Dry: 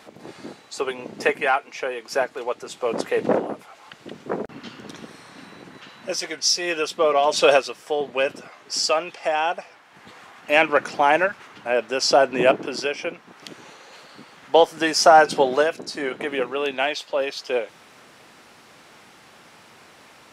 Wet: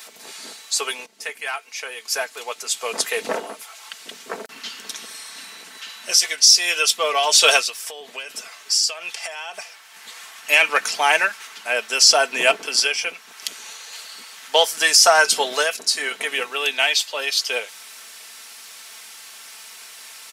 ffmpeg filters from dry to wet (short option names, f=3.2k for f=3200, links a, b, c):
-filter_complex "[0:a]asplit=3[a][b][c];[a]afade=t=out:st=7.63:d=0.02[d];[b]acompressor=threshold=-29dB:ratio=10:attack=3.2:release=140:knee=1:detection=peak,afade=t=in:st=7.63:d=0.02,afade=t=out:st=9.53:d=0.02[e];[c]afade=t=in:st=9.53:d=0.02[f];[d][e][f]amix=inputs=3:normalize=0,asplit=2[g][h];[g]atrim=end=1.06,asetpts=PTS-STARTPTS,afade=t=out:st=1.056:d=0.004:c=hsin:silence=0.133352[i];[h]atrim=start=1.06,asetpts=PTS-STARTPTS,afade=t=in:d=1.66:silence=0.133352[j];[i][j]concat=n=2:v=0:a=1,aderivative,aecho=1:1:4.5:0.49,alimiter=level_in=17dB:limit=-1dB:release=50:level=0:latency=1,volume=-1dB"